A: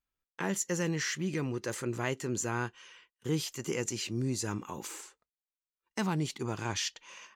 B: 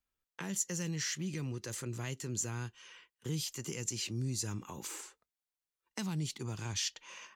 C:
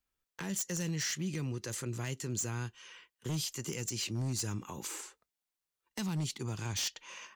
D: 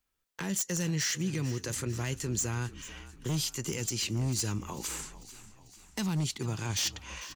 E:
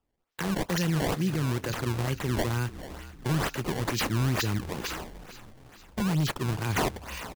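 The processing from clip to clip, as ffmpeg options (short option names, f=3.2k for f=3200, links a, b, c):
-filter_complex "[0:a]acrossover=split=180|3000[a][b][c];[b]acompressor=threshold=-44dB:ratio=5[d];[a][d][c]amix=inputs=3:normalize=0"
-af "aeval=exprs='0.0316*(abs(mod(val(0)/0.0316+3,4)-2)-1)':c=same,volume=2dB"
-filter_complex "[0:a]asplit=6[a][b][c][d][e][f];[b]adelay=445,afreqshift=-44,volume=-16dB[g];[c]adelay=890,afreqshift=-88,volume=-21.2dB[h];[d]adelay=1335,afreqshift=-132,volume=-26.4dB[i];[e]adelay=1780,afreqshift=-176,volume=-31.6dB[j];[f]adelay=2225,afreqshift=-220,volume=-36.8dB[k];[a][g][h][i][j][k]amix=inputs=6:normalize=0,volume=4dB"
-af "aresample=16000,aresample=44100,acrusher=samples=20:mix=1:aa=0.000001:lfo=1:lforange=32:lforate=2.2,volume=4.5dB"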